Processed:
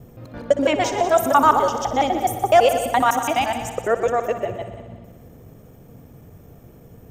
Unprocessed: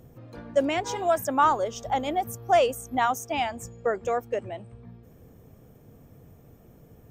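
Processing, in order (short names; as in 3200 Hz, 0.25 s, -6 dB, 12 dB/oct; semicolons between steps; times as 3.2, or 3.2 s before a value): local time reversal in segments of 84 ms; multi-head echo 61 ms, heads all three, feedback 54%, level -15 dB; gain +6.5 dB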